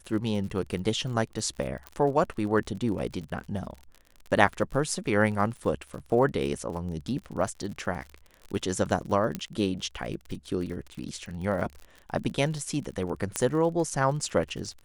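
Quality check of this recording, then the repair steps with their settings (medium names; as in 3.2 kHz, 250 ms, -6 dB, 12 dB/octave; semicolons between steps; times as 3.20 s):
crackle 47 per s -36 dBFS
1.87 s: pop -21 dBFS
9.35 s: pop -16 dBFS
13.36 s: pop -10 dBFS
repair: de-click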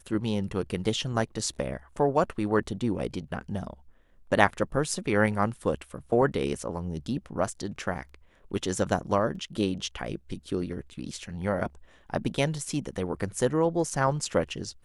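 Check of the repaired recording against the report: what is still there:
9.35 s: pop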